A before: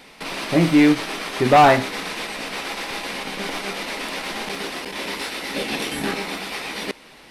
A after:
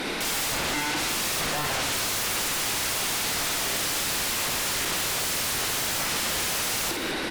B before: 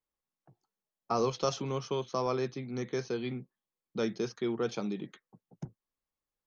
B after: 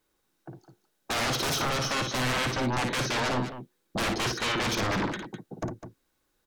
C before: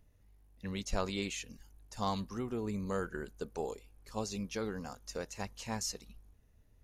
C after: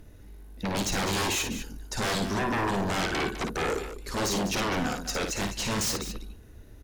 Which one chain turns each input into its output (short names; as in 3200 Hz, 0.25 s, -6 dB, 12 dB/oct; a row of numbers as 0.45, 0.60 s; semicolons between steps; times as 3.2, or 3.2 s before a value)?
compressor 4:1, threshold -26 dBFS; hard clip -28 dBFS; small resonant body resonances 330/1500/3800 Hz, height 9 dB, ringing for 25 ms; sine folder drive 19 dB, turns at -18 dBFS; on a send: loudspeakers at several distances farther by 19 m -6 dB, 70 m -11 dB; on the sum: gain -7.5 dB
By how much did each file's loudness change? -3.0, +5.5, +10.0 LU